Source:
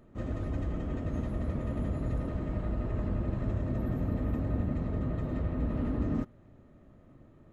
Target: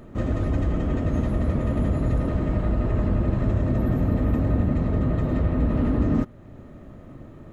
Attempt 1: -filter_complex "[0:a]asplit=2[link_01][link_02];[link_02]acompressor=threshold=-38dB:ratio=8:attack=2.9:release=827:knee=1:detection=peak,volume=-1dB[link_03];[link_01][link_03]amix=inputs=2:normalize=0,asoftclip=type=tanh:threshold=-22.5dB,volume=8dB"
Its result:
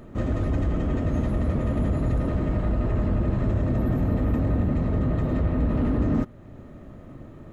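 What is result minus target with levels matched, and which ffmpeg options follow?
soft clipping: distortion +13 dB
-filter_complex "[0:a]asplit=2[link_01][link_02];[link_02]acompressor=threshold=-38dB:ratio=8:attack=2.9:release=827:knee=1:detection=peak,volume=-1dB[link_03];[link_01][link_03]amix=inputs=2:normalize=0,asoftclip=type=tanh:threshold=-14.5dB,volume=8dB"

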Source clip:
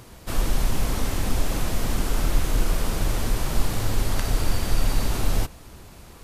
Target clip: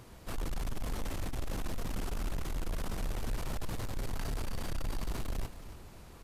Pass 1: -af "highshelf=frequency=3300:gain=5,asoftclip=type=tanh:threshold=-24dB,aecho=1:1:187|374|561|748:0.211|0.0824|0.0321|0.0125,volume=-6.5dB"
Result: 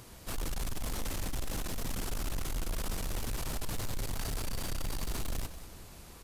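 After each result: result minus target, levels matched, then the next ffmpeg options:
echo 86 ms early; 8,000 Hz band +6.0 dB
-af "highshelf=frequency=3300:gain=5,asoftclip=type=tanh:threshold=-24dB,aecho=1:1:273|546|819|1092:0.211|0.0824|0.0321|0.0125,volume=-6.5dB"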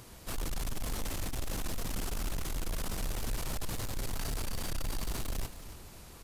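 8,000 Hz band +6.0 dB
-af "highshelf=frequency=3300:gain=-4,asoftclip=type=tanh:threshold=-24dB,aecho=1:1:273|546|819|1092:0.211|0.0824|0.0321|0.0125,volume=-6.5dB"

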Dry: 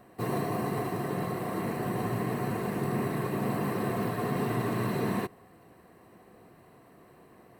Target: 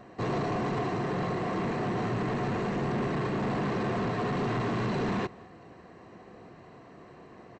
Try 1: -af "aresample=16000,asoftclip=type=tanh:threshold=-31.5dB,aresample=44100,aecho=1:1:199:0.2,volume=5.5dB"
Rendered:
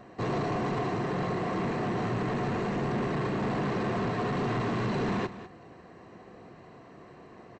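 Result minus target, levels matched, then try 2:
echo-to-direct +11 dB
-af "aresample=16000,asoftclip=type=tanh:threshold=-31.5dB,aresample=44100,aecho=1:1:199:0.0562,volume=5.5dB"

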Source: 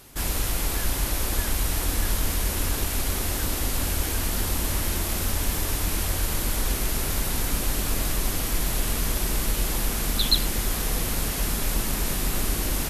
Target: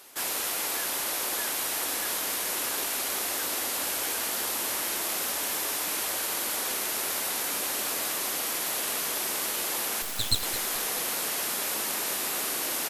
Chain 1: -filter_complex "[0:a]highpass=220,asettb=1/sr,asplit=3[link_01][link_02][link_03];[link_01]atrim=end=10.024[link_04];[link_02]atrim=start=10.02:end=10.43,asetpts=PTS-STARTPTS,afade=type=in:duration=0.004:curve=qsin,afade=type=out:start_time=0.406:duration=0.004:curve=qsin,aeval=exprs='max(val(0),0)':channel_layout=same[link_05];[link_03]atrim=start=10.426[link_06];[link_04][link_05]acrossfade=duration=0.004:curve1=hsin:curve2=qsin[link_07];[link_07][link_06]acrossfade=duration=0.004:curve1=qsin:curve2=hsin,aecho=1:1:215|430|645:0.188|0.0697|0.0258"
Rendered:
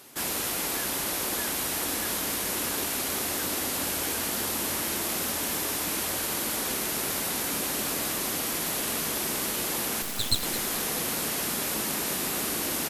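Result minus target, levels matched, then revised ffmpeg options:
250 Hz band +7.5 dB
-filter_complex "[0:a]highpass=470,asettb=1/sr,asplit=3[link_01][link_02][link_03];[link_01]atrim=end=10.024[link_04];[link_02]atrim=start=10.02:end=10.43,asetpts=PTS-STARTPTS,afade=type=in:duration=0.004:curve=qsin,afade=type=out:start_time=0.406:duration=0.004:curve=qsin,aeval=exprs='max(val(0),0)':channel_layout=same[link_05];[link_03]atrim=start=10.426[link_06];[link_04][link_05]acrossfade=duration=0.004:curve1=hsin:curve2=qsin[link_07];[link_07][link_06]acrossfade=duration=0.004:curve1=qsin:curve2=hsin,aecho=1:1:215|430|645:0.188|0.0697|0.0258"

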